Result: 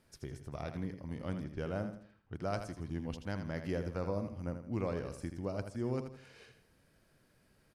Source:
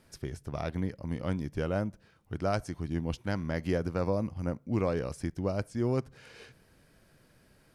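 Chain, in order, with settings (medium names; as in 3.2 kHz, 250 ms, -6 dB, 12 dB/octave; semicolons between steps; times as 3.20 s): 1.44–2.35 s: level-controlled noise filter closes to 1.9 kHz, open at -28 dBFS; feedback delay 81 ms, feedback 37%, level -8.5 dB; trim -7 dB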